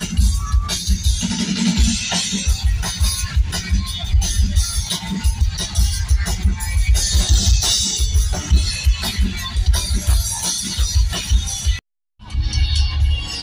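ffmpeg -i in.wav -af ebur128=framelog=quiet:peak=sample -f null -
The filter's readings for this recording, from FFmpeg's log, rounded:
Integrated loudness:
  I:         -19.0 LUFS
  Threshold: -29.0 LUFS
Loudness range:
  LRA:         2.7 LU
  Threshold: -38.9 LUFS
  LRA low:   -20.1 LUFS
  LRA high:  -17.4 LUFS
Sample peak:
  Peak:       -4.6 dBFS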